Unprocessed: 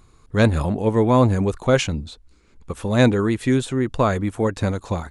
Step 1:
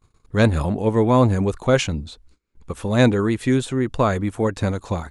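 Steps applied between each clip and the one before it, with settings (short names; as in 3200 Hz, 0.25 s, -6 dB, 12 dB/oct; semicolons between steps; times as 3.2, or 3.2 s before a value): gate -50 dBFS, range -23 dB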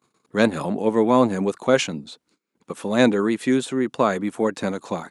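HPF 180 Hz 24 dB/oct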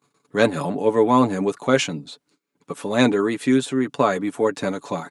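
comb 7 ms, depth 54%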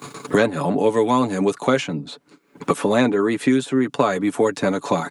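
three-band squash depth 100%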